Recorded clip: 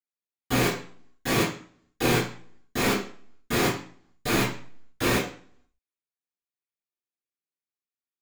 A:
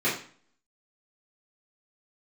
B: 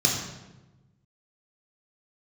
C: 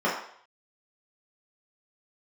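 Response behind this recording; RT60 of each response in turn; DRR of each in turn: A; 0.45, 1.1, 0.60 seconds; −11.5, −2.0, −7.5 decibels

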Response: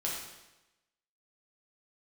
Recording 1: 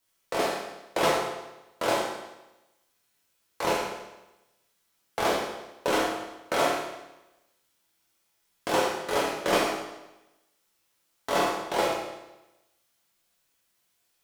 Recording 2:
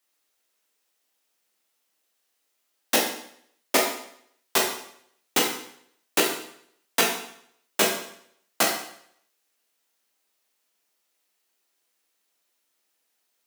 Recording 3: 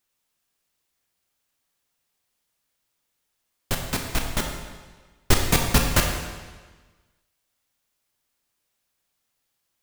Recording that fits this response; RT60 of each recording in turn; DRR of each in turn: 1; 1.0, 0.65, 1.4 seconds; −5.0, −1.5, 2.0 decibels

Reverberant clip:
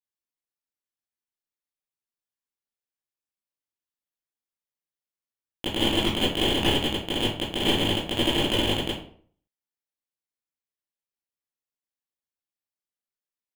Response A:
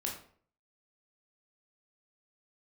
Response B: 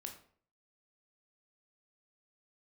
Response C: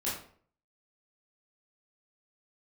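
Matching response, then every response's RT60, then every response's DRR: C; 0.55, 0.55, 0.55 seconds; −1.5, 3.0, −9.0 decibels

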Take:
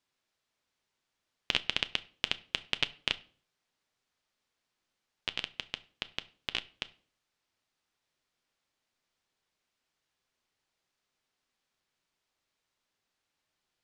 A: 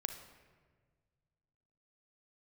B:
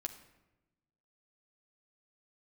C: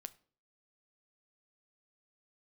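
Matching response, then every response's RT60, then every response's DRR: C; 1.6, 1.0, 0.45 seconds; 6.5, 3.5, 12.0 decibels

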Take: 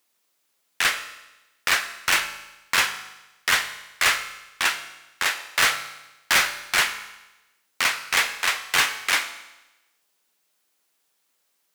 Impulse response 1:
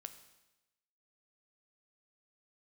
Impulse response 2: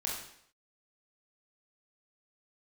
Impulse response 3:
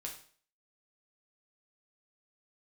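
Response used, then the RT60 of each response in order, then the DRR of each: 1; 1.0, 0.65, 0.45 seconds; 8.5, −4.0, −1.0 decibels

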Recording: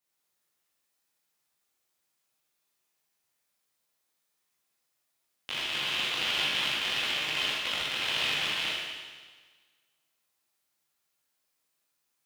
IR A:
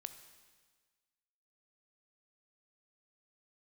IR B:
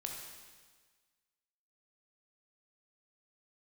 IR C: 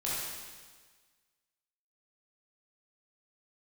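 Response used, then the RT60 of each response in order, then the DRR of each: C; 1.5, 1.5, 1.5 seconds; 9.0, 0.0, −8.5 decibels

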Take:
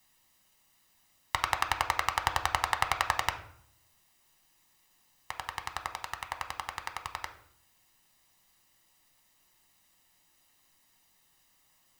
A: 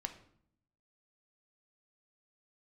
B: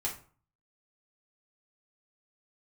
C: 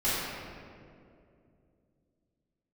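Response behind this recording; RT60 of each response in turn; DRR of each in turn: A; 0.65, 0.45, 2.5 seconds; 6.0, −3.5, −13.5 decibels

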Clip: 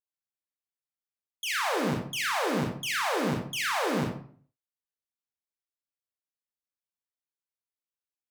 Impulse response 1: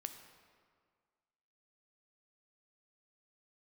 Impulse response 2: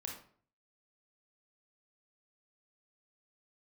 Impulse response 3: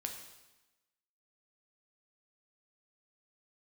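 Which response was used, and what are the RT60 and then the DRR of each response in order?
2; 1.9, 0.50, 1.0 seconds; 7.0, −0.5, 2.5 decibels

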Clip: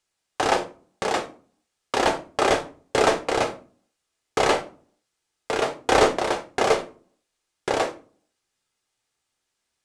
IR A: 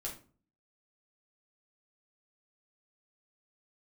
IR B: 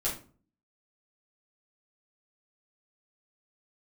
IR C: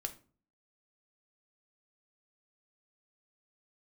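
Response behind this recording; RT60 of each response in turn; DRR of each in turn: C; 0.40, 0.40, 0.40 seconds; −3.0, −7.0, 6.5 decibels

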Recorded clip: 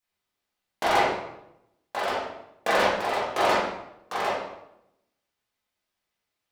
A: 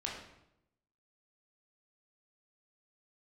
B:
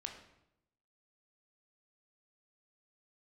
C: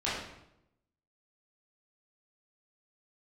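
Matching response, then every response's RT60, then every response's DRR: C; 0.80, 0.80, 0.80 seconds; −3.0, 3.0, −9.5 decibels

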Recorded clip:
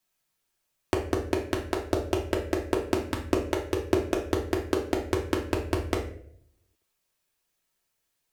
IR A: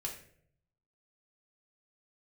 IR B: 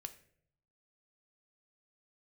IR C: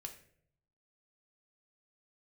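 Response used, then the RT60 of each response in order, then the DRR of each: A; 0.60, 0.65, 0.60 seconds; −1.5, 8.0, 3.5 decibels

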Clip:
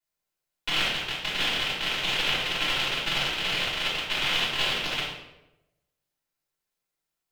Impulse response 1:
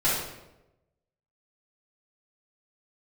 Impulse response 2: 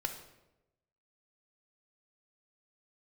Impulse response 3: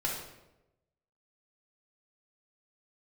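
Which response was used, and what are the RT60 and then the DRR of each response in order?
1; 0.95, 0.95, 0.95 seconds; −9.5, 5.5, −2.5 decibels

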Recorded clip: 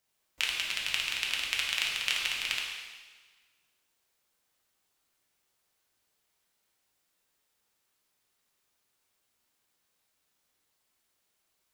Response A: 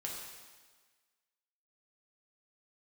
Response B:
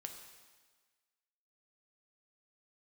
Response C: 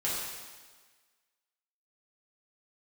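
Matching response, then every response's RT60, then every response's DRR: A; 1.4, 1.4, 1.4 seconds; −3.0, 3.5, −8.0 decibels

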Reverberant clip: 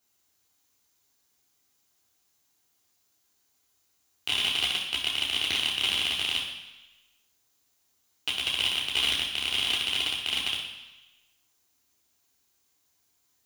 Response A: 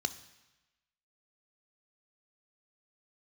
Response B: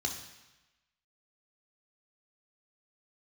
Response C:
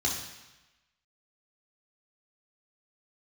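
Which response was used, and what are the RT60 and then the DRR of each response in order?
C; 1.0, 1.0, 1.0 seconds; 11.0, 2.0, −3.0 decibels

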